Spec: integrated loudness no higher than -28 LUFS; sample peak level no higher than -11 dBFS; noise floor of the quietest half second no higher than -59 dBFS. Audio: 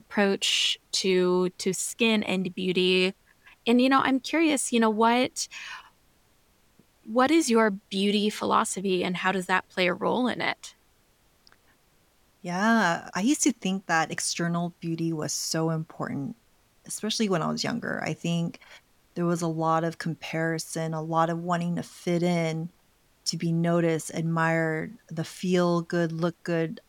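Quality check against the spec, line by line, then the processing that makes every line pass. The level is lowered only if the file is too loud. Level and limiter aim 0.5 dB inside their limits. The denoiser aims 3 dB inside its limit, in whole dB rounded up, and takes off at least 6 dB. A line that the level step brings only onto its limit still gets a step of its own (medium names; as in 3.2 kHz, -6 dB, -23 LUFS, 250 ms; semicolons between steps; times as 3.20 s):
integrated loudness -26.0 LUFS: fail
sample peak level -8.5 dBFS: fail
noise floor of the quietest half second -64 dBFS: pass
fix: trim -2.5 dB; peak limiter -11.5 dBFS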